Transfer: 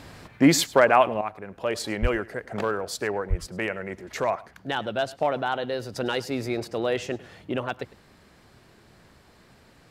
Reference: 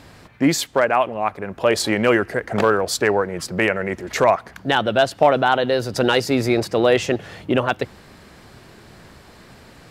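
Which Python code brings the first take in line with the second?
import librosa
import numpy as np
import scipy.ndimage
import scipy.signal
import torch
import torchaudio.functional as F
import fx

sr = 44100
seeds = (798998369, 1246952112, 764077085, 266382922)

y = fx.highpass(x, sr, hz=140.0, slope=24, at=(2.01, 2.13), fade=0.02)
y = fx.highpass(y, sr, hz=140.0, slope=24, at=(3.29, 3.41), fade=0.02)
y = fx.fix_echo_inverse(y, sr, delay_ms=104, level_db=-20.5)
y = fx.gain(y, sr, db=fx.steps((0.0, 0.0), (1.21, 10.0)))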